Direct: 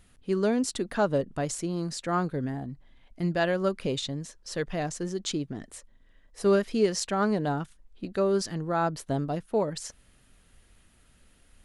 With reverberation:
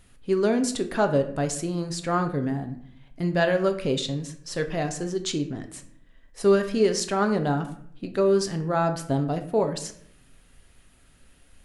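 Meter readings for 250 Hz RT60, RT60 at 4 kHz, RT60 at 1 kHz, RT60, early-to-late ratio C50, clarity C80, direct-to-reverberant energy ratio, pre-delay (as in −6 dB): 0.95 s, 0.45 s, 0.60 s, 0.65 s, 11.5 dB, 15.0 dB, 6.0 dB, 7 ms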